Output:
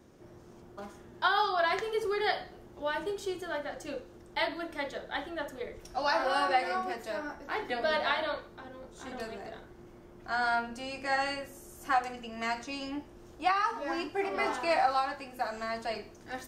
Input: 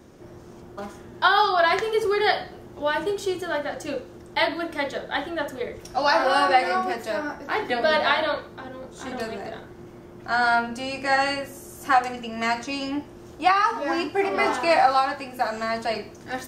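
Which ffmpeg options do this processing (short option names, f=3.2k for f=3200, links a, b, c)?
-af "asubboost=boost=3:cutoff=56,volume=-8.5dB"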